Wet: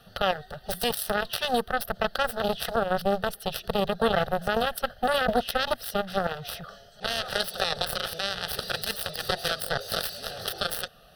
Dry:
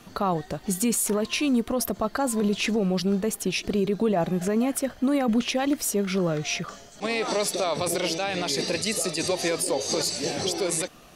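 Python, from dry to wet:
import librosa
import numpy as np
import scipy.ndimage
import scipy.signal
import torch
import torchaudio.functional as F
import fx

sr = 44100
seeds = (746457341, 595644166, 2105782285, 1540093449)

y = fx.cheby_harmonics(x, sr, harmonics=(3,), levels_db=(-7,), full_scale_db=-14.5)
y = fx.fixed_phaser(y, sr, hz=1500.0, stages=8)
y = F.gain(torch.from_numpy(y), 8.0).numpy()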